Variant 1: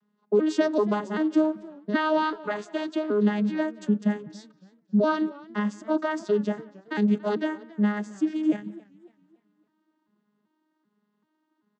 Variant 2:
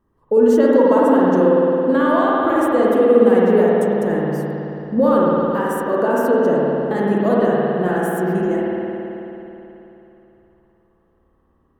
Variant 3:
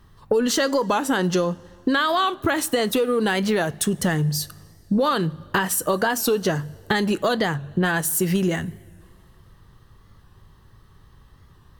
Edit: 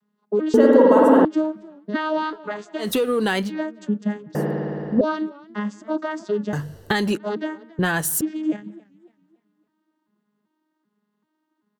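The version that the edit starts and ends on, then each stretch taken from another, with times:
1
0.54–1.25 s: from 2
2.83–3.46 s: from 3, crossfade 0.10 s
4.35–5.01 s: from 2
6.53–7.17 s: from 3
7.79–8.21 s: from 3

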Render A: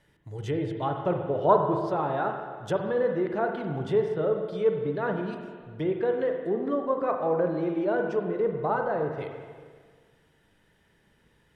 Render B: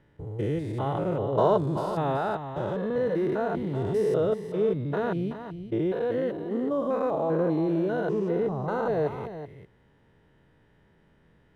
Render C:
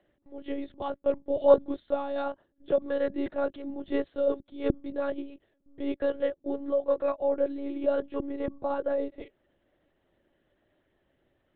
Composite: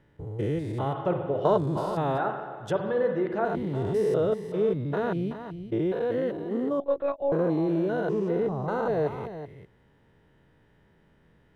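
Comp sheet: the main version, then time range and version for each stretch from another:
B
0.93–1.45 s: from A
2.18–3.45 s: from A
6.80–7.32 s: from C

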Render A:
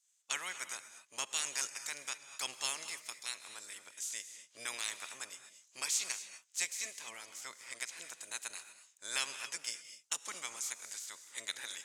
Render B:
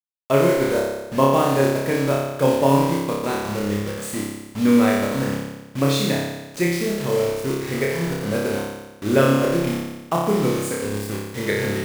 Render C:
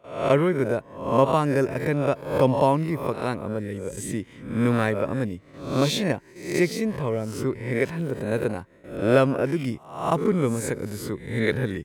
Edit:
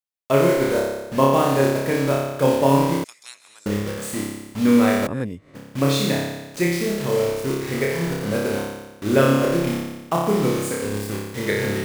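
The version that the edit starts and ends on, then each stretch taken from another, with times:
B
3.04–3.66 s: from A
5.07–5.55 s: from C

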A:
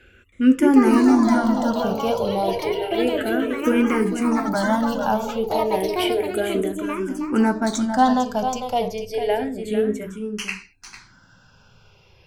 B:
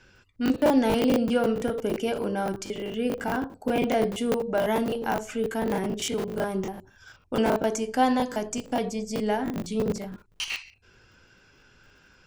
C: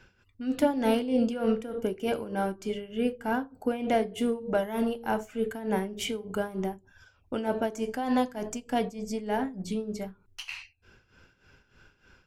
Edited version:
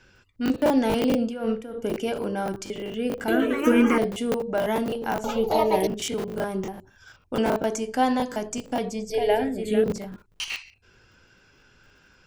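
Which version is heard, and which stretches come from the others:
B
1.15–1.81 s: from C
3.28–3.98 s: from A
5.24–5.87 s: from A
9.10–9.84 s: from A

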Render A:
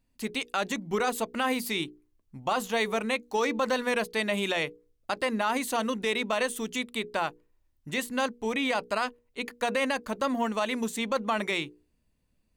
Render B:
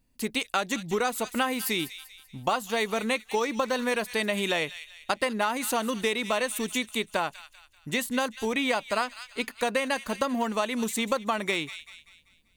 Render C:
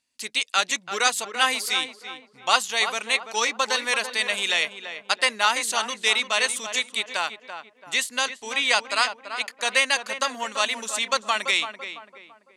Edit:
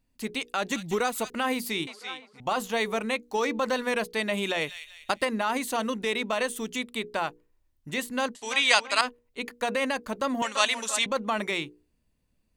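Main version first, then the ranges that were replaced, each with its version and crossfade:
A
0.72–1.30 s: from B
1.87–2.40 s: from C
4.61–5.25 s: from B
8.35–9.01 s: from C
10.42–11.06 s: from C

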